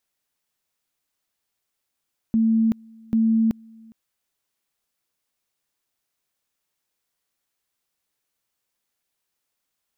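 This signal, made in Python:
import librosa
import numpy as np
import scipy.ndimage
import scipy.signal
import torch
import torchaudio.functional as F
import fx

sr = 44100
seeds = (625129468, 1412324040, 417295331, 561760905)

y = fx.two_level_tone(sr, hz=224.0, level_db=-15.5, drop_db=28.0, high_s=0.38, low_s=0.41, rounds=2)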